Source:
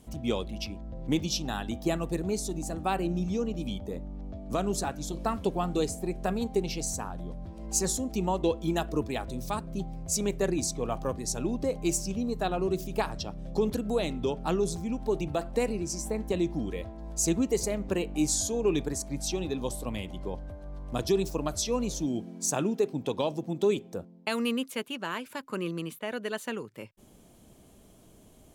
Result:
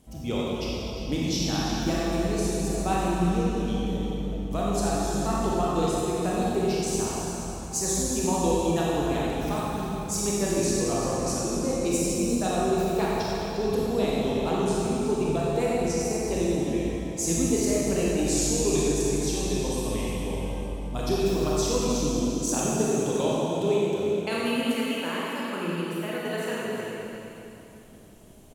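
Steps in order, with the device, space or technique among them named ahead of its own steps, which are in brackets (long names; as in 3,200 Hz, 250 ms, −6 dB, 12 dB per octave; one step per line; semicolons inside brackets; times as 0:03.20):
cave (single-tap delay 351 ms −10.5 dB; convolution reverb RT60 3.0 s, pre-delay 25 ms, DRR −6 dB)
level −3 dB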